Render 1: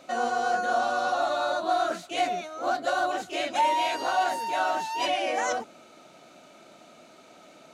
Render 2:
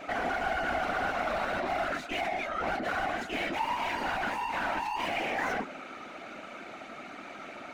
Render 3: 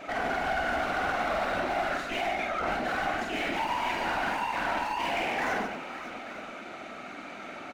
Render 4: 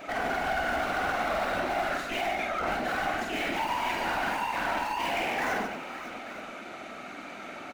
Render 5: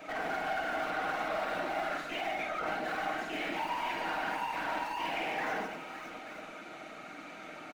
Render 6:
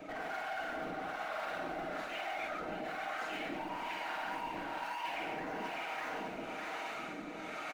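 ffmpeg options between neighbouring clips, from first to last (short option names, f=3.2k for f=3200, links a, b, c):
-filter_complex "[0:a]asplit=2[a][b];[b]highpass=f=720:p=1,volume=29dB,asoftclip=type=tanh:threshold=-14dB[c];[a][c]amix=inputs=2:normalize=0,lowpass=f=1.1k:p=1,volume=-6dB,afftfilt=real='hypot(re,im)*cos(2*PI*random(0))':imag='hypot(re,im)*sin(2*PI*random(1))':win_size=512:overlap=0.75,equalizer=f=125:t=o:w=1:g=-7,equalizer=f=250:t=o:w=1:g=5,equalizer=f=500:t=o:w=1:g=-7,equalizer=f=1k:t=o:w=1:g=-4,equalizer=f=2k:t=o:w=1:g=6,equalizer=f=4k:t=o:w=1:g=-4,equalizer=f=8k:t=o:w=1:g=-3"
-af "asoftclip=type=hard:threshold=-25.5dB,aecho=1:1:48|145|561|883:0.631|0.447|0.224|0.158"
-af "highshelf=f=11k:g=10.5"
-filter_complex "[0:a]aecho=1:1:6.4:0.41,acrossover=split=160|4600[a][b][c];[a]acompressor=threshold=-53dB:ratio=6[d];[c]alimiter=level_in=20.5dB:limit=-24dB:level=0:latency=1:release=194,volume=-20.5dB[e];[d][b][e]amix=inputs=3:normalize=0,volume=-5.5dB"
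-filter_complex "[0:a]aecho=1:1:602|1204|1806|2408|3010|3612:0.501|0.236|0.111|0.052|0.0245|0.0115,acrossover=split=540[a][b];[a]aeval=exprs='val(0)*(1-0.7/2+0.7/2*cos(2*PI*1.1*n/s))':c=same[c];[b]aeval=exprs='val(0)*(1-0.7/2-0.7/2*cos(2*PI*1.1*n/s))':c=same[d];[c][d]amix=inputs=2:normalize=0,areverse,acompressor=threshold=-43dB:ratio=6,areverse,volume=6dB"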